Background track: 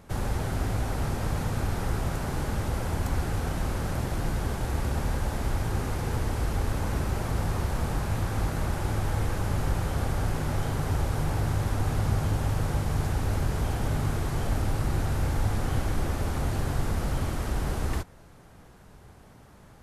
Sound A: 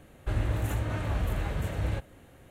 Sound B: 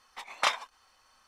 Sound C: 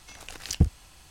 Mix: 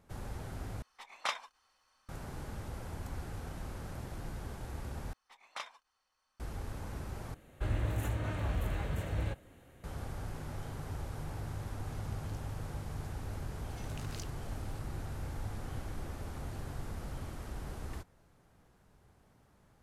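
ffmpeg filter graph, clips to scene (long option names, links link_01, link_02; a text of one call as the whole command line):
ffmpeg -i bed.wav -i cue0.wav -i cue1.wav -i cue2.wav -filter_complex "[2:a]asplit=2[link_01][link_02];[3:a]asplit=2[link_03][link_04];[0:a]volume=-13.5dB[link_05];[link_03]acompressor=threshold=-43dB:ratio=6:attack=3.2:release=140:knee=1:detection=peak[link_06];[link_04]acompressor=threshold=-33dB:ratio=6:attack=3.2:release=140:knee=1:detection=peak[link_07];[link_05]asplit=4[link_08][link_09][link_10][link_11];[link_08]atrim=end=0.824[link_12];[link_01]atrim=end=1.27,asetpts=PTS-STARTPTS,volume=-8.5dB[link_13];[link_09]atrim=start=2.086:end=5.134[link_14];[link_02]atrim=end=1.27,asetpts=PTS-STARTPTS,volume=-16.5dB[link_15];[link_10]atrim=start=6.396:end=7.344[link_16];[1:a]atrim=end=2.5,asetpts=PTS-STARTPTS,volume=-4.5dB[link_17];[link_11]atrim=start=9.836[link_18];[link_06]atrim=end=1.1,asetpts=PTS-STARTPTS,volume=-16.5dB,afade=type=in:duration=0.004:curve=hsin,afade=type=out:start_time=1.096:duration=0.004:curve=hsin,adelay=11840[link_19];[link_07]atrim=end=1.1,asetpts=PTS-STARTPTS,volume=-9dB,afade=type=in:duration=0.004:curve=hsin,afade=type=out:start_time=1.096:duration=0.004:curve=hsin,adelay=13690[link_20];[link_12][link_13]acrossfade=duration=0.004:curve1=hsin:curve2=hsin[link_21];[link_21][link_14]acrossfade=duration=0.004:curve1=hsin:curve2=hsin[link_22];[link_22][link_15]acrossfade=duration=0.004:curve1=hsin:curve2=hsin[link_23];[link_23][link_16]acrossfade=duration=0.004:curve1=hsin:curve2=hsin[link_24];[link_24][link_17]acrossfade=duration=0.004:curve1=hsin:curve2=hsin[link_25];[link_25][link_18]acrossfade=duration=0.004:curve1=hsin:curve2=hsin[link_26];[link_26][link_19][link_20]amix=inputs=3:normalize=0" out.wav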